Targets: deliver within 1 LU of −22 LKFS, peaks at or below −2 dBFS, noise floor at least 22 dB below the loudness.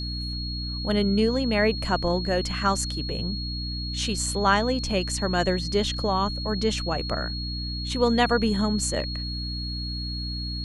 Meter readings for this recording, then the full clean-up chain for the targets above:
mains hum 60 Hz; hum harmonics up to 300 Hz; level of the hum −30 dBFS; interfering tone 4,300 Hz; level of the tone −33 dBFS; integrated loudness −25.5 LKFS; sample peak −6.5 dBFS; target loudness −22.0 LKFS
→ hum removal 60 Hz, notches 5
notch filter 4,300 Hz, Q 30
level +3.5 dB

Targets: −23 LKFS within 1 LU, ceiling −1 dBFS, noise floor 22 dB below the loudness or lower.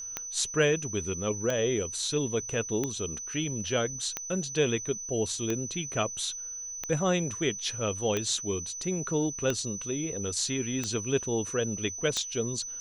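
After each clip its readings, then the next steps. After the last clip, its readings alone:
number of clicks 10; interfering tone 6,000 Hz; level of the tone −36 dBFS; integrated loudness −30.0 LKFS; sample peak −11.5 dBFS; target loudness −23.0 LKFS
→ click removal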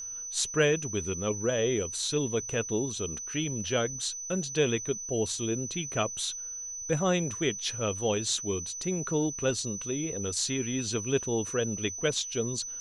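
number of clicks 0; interfering tone 6,000 Hz; level of the tone −36 dBFS
→ notch filter 6,000 Hz, Q 30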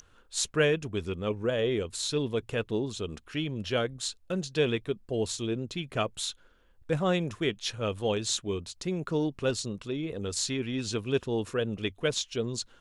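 interfering tone none found; integrated loudness −31.0 LKFS; sample peak −13.0 dBFS; target loudness −23.0 LKFS
→ level +8 dB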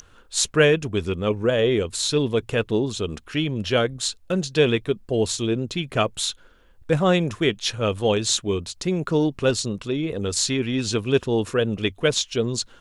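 integrated loudness −23.0 LKFS; sample peak −5.0 dBFS; background noise floor −53 dBFS

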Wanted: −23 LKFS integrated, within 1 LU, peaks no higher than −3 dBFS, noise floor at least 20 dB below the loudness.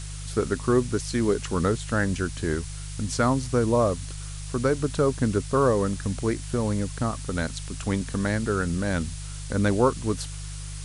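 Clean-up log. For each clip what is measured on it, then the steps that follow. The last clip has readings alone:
mains hum 50 Hz; hum harmonics up to 150 Hz; level of the hum −33 dBFS; background noise floor −36 dBFS; target noise floor −46 dBFS; integrated loudness −26.0 LKFS; sample peak −8.5 dBFS; target loudness −23.0 LKFS
→ hum removal 50 Hz, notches 3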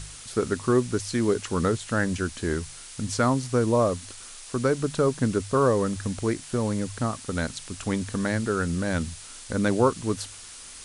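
mains hum none found; background noise floor −43 dBFS; target noise floor −47 dBFS
→ broadband denoise 6 dB, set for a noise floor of −43 dBFS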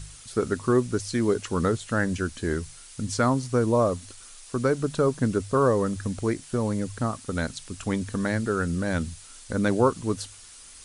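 background noise floor −47 dBFS; integrated loudness −26.5 LKFS; sample peak −10.0 dBFS; target loudness −23.0 LKFS
→ level +3.5 dB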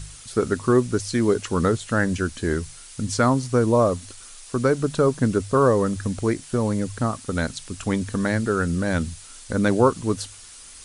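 integrated loudness −23.0 LKFS; sample peak −6.5 dBFS; background noise floor −43 dBFS

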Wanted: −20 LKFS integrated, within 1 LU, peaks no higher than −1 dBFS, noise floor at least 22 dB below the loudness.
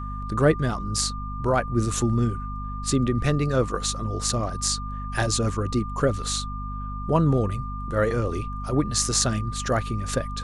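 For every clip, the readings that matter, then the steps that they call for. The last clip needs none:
mains hum 50 Hz; hum harmonics up to 250 Hz; level of the hum −30 dBFS; interfering tone 1,200 Hz; level of the tone −35 dBFS; integrated loudness −25.0 LKFS; sample peak −3.5 dBFS; target loudness −20.0 LKFS
→ hum removal 50 Hz, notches 5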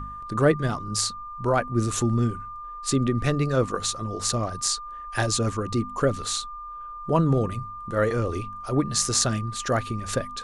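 mains hum none found; interfering tone 1,200 Hz; level of the tone −35 dBFS
→ notch filter 1,200 Hz, Q 30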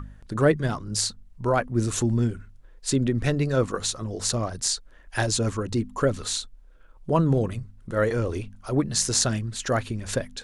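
interfering tone none found; integrated loudness −25.5 LKFS; sample peak −3.5 dBFS; target loudness −20.0 LKFS
→ level +5.5 dB
brickwall limiter −1 dBFS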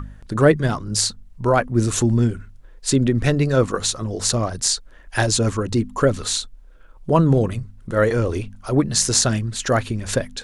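integrated loudness −20.0 LKFS; sample peak −1.0 dBFS; background noise floor −45 dBFS

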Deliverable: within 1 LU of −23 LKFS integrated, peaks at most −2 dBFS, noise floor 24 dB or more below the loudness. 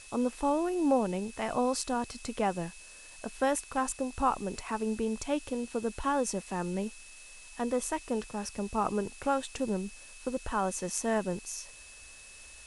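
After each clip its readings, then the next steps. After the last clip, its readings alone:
interfering tone 2,600 Hz; level of the tone −53 dBFS; background noise floor −51 dBFS; target noise floor −57 dBFS; integrated loudness −32.5 LKFS; sample peak −14.5 dBFS; target loudness −23.0 LKFS
→ notch filter 2,600 Hz, Q 30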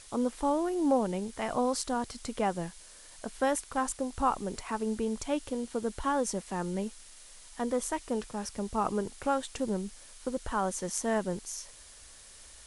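interfering tone none found; background noise floor −52 dBFS; target noise floor −57 dBFS
→ noise reduction from a noise print 6 dB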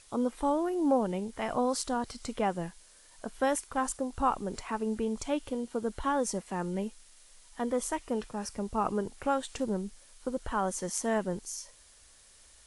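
background noise floor −58 dBFS; integrated loudness −32.5 LKFS; sample peak −14.5 dBFS; target loudness −23.0 LKFS
→ level +9.5 dB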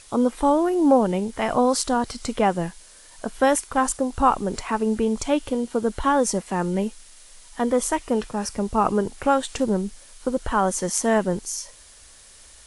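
integrated loudness −23.0 LKFS; sample peak −5.0 dBFS; background noise floor −49 dBFS

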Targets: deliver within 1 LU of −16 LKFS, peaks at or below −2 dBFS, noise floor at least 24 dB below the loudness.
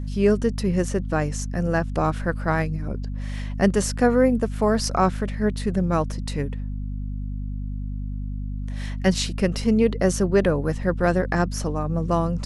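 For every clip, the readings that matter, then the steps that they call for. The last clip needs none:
mains hum 50 Hz; hum harmonics up to 250 Hz; level of the hum −26 dBFS; integrated loudness −24.0 LKFS; sample peak −4.5 dBFS; target loudness −16.0 LKFS
→ hum removal 50 Hz, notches 5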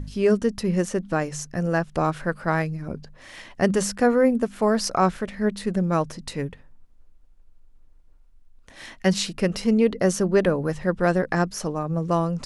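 mains hum none found; integrated loudness −23.5 LKFS; sample peak −5.0 dBFS; target loudness −16.0 LKFS
→ level +7.5 dB
brickwall limiter −2 dBFS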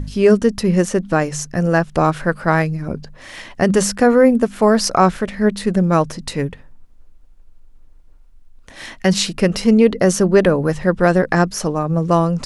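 integrated loudness −16.5 LKFS; sample peak −2.0 dBFS; background noise floor −44 dBFS

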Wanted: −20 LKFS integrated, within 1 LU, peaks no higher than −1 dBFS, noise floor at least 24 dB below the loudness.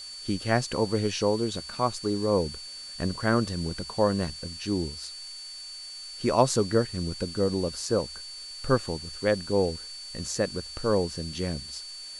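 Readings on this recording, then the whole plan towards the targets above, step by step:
interfering tone 4,500 Hz; level of the tone −39 dBFS; background noise floor −41 dBFS; target noise floor −53 dBFS; integrated loudness −28.5 LKFS; sample peak −6.5 dBFS; target loudness −20.0 LKFS
→ notch filter 4,500 Hz, Q 30
noise reduction from a noise print 12 dB
level +8.5 dB
brickwall limiter −1 dBFS

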